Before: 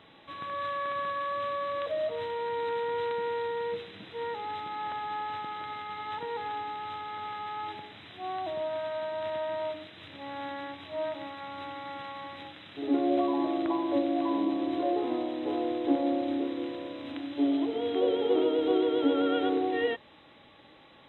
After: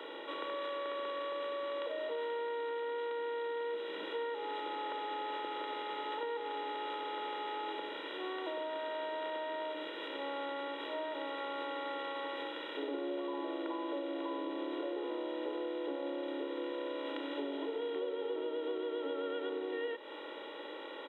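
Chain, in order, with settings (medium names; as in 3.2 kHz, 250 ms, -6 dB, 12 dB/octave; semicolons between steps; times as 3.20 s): spectral levelling over time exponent 0.6; steep high-pass 200 Hz 96 dB/octave; comb 2.1 ms, depth 75%; compression, threshold -30 dBFS, peak gain reduction 13.5 dB; trim -5.5 dB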